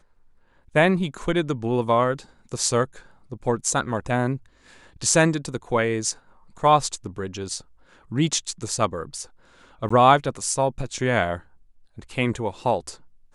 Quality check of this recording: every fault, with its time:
9.89–9.90 s: dropout 15 ms

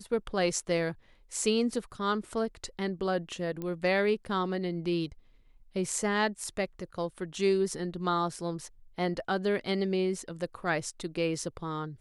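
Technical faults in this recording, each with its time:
3.62 s: pop -24 dBFS

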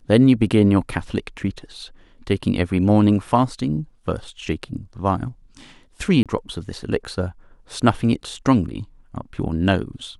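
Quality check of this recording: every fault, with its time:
6.23–6.26 s: dropout 27 ms

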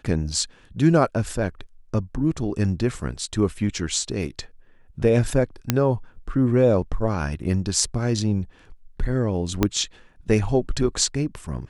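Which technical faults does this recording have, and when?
5.70 s: pop -3 dBFS
9.63 s: pop -5 dBFS

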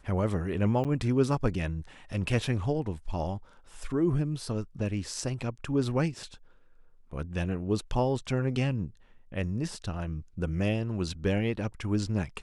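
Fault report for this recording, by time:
0.84–0.85 s: dropout 7.8 ms

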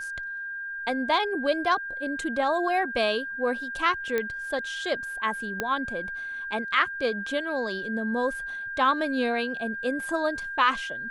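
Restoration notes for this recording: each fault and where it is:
whine 1.6 kHz -32 dBFS
4.18 s: pop -14 dBFS
5.60 s: pop -13 dBFS

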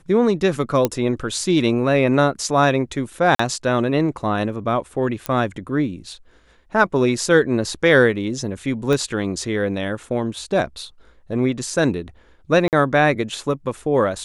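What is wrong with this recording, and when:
0.85 s: pop -4 dBFS
3.35–3.39 s: dropout 44 ms
5.26 s: pop -8 dBFS
8.93 s: pop -9 dBFS
12.68–12.73 s: dropout 48 ms

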